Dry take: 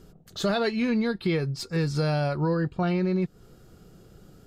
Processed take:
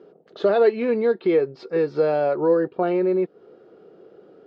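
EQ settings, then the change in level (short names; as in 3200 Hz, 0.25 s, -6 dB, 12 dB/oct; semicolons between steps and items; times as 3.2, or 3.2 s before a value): BPF 340–3600 Hz; air absorption 160 m; bell 440 Hz +13.5 dB 1.4 oct; 0.0 dB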